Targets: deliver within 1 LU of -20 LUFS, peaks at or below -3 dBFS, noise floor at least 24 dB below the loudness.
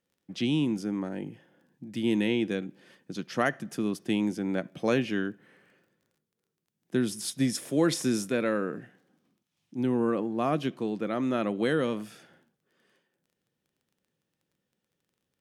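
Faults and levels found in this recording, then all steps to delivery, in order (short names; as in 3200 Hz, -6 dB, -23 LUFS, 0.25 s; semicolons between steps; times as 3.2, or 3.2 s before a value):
ticks 14/s; loudness -29.5 LUFS; peak -11.0 dBFS; loudness target -20.0 LUFS
-> de-click; gain +9.5 dB; limiter -3 dBFS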